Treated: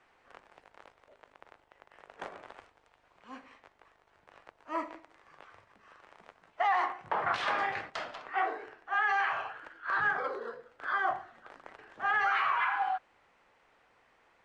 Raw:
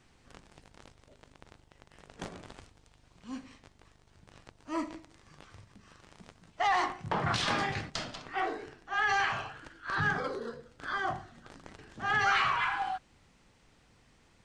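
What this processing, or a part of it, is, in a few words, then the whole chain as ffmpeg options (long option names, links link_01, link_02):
DJ mixer with the lows and highs turned down: -filter_complex "[0:a]acrossover=split=440 2500:gain=0.0891 1 0.141[link_01][link_02][link_03];[link_01][link_02][link_03]amix=inputs=3:normalize=0,alimiter=limit=-23.5dB:level=0:latency=1:release=256,volume=4dB"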